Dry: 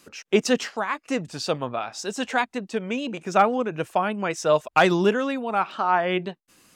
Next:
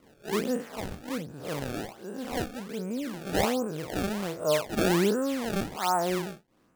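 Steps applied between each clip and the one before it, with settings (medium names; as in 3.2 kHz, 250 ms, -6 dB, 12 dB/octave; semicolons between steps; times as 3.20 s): spectral blur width 115 ms; low-pass 1.2 kHz 12 dB/octave; decimation with a swept rate 25×, swing 160% 1.3 Hz; trim -1.5 dB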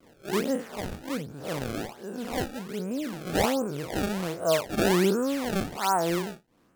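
wow and flutter 120 cents; trim +1.5 dB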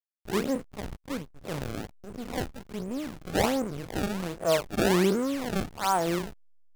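hysteresis with a dead band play -29 dBFS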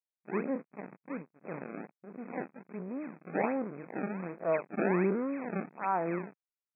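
brick-wall FIR band-pass 150–2600 Hz; trim -5 dB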